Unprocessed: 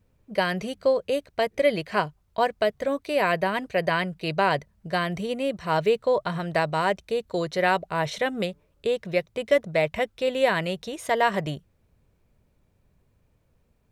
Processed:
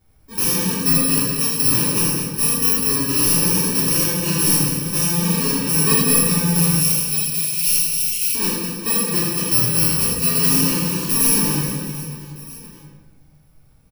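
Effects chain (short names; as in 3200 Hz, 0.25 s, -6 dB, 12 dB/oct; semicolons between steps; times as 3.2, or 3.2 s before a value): FFT order left unsorted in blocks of 64 samples; 6.73–8.35 steep high-pass 2300 Hz 48 dB/oct; soft clip -15 dBFS, distortion -17 dB; reverse bouncing-ball echo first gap 80 ms, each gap 1.6×, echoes 5; shoebox room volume 580 m³, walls mixed, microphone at 3.3 m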